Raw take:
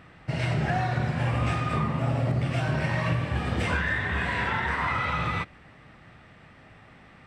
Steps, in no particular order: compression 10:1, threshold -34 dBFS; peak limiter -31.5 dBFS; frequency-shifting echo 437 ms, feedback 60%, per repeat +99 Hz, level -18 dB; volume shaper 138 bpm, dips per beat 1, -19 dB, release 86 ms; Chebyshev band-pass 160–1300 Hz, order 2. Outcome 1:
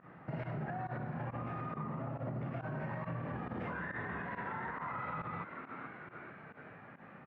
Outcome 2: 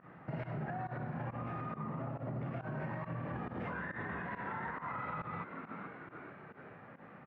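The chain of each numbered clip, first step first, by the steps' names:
Chebyshev band-pass > frequency-shifting echo > volume shaper > compression > peak limiter; frequency-shifting echo > Chebyshev band-pass > compression > peak limiter > volume shaper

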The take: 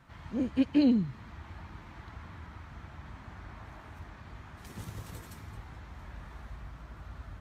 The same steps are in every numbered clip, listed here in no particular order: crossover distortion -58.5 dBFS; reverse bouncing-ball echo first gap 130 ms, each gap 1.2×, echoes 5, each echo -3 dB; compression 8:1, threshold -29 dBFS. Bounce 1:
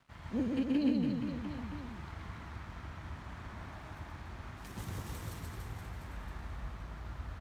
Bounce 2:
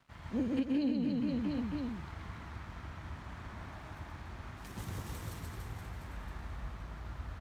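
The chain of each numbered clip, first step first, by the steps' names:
compression > crossover distortion > reverse bouncing-ball echo; crossover distortion > reverse bouncing-ball echo > compression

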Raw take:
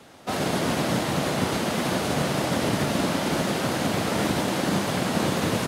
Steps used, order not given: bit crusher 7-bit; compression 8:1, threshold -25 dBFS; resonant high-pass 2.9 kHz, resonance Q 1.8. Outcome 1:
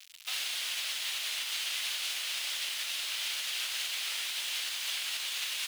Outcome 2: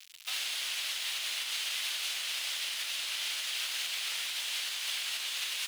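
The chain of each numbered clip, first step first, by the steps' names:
compression > bit crusher > resonant high-pass; bit crusher > compression > resonant high-pass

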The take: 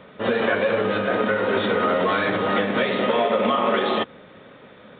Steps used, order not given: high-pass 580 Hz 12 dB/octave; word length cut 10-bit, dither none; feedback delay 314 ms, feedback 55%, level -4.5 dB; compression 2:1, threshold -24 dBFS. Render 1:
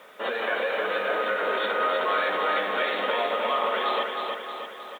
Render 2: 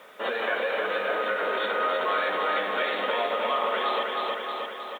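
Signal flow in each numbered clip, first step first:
compression > high-pass > word length cut > feedback delay; feedback delay > compression > high-pass > word length cut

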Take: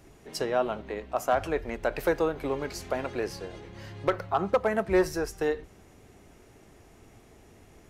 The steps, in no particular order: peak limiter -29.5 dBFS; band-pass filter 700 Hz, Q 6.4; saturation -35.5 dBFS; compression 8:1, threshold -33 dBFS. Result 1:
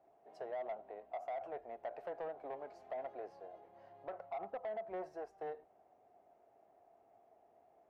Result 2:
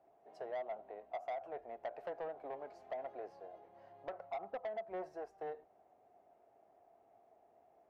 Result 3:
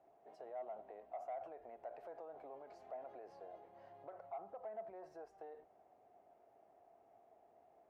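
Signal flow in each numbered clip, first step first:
band-pass filter > peak limiter > compression > saturation; band-pass filter > compression > saturation > peak limiter; peak limiter > compression > band-pass filter > saturation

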